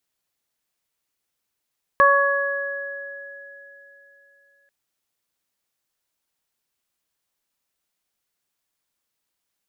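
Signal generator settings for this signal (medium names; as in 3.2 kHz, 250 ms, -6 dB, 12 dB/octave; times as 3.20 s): additive tone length 2.69 s, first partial 560 Hz, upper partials 5.5/1 dB, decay 3.15 s, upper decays 1.30/3.63 s, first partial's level -17 dB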